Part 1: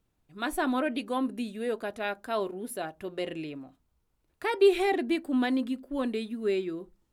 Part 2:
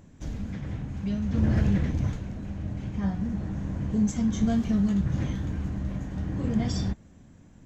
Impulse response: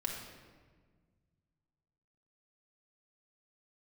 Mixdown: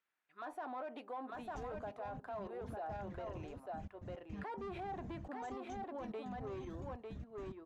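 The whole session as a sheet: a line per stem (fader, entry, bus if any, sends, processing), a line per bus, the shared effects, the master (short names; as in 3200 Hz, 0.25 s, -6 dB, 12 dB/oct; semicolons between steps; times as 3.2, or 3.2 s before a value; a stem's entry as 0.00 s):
+1.5 dB, 0.00 s, no send, echo send -5 dB, low shelf 210 Hz -8.5 dB; soft clip -29 dBFS, distortion -7 dB; auto-wah 790–1800 Hz, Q 2.1, down, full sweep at -37.5 dBFS
-8.0 dB, 1.35 s, no send, no echo send, reverb removal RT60 0.75 s; compressor, threshold -36 dBFS, peak gain reduction 16 dB; step gate "xxxx.x.x.x.x" 107 bpm -24 dB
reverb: off
echo: echo 0.9 s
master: limiter -36.5 dBFS, peak gain reduction 9.5 dB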